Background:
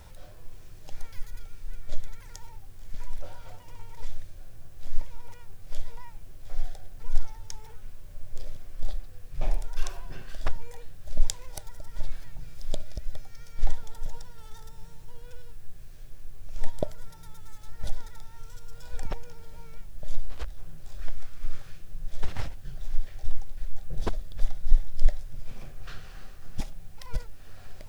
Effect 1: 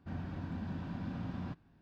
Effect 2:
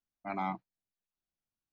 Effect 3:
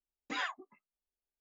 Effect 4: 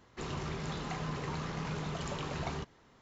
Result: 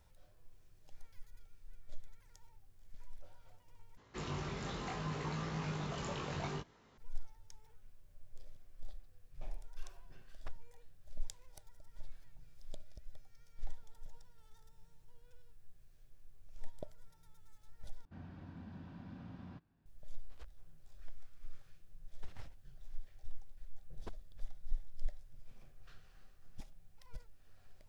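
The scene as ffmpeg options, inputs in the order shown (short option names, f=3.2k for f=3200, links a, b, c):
-filter_complex "[0:a]volume=-18dB[a];[4:a]flanger=delay=18.5:depth=4.2:speed=0.69[b];[a]asplit=3[c][d][e];[c]atrim=end=3.974[f];[b]atrim=end=3.01[g];[d]atrim=start=6.976:end=18.054[h];[1:a]atrim=end=1.81,asetpts=PTS-STARTPTS,volume=-10.5dB[i];[e]atrim=start=19.856[j];[f][g]acrossfade=d=0.004:c1=hsin:c2=hsin[k];[k][h]acrossfade=d=0.004:c1=hsin:c2=hsin[l];[l][i]acrossfade=d=0.004:c1=hsin:c2=hsin[m];[m][j]acrossfade=d=0.004:c1=hsin:c2=hsin"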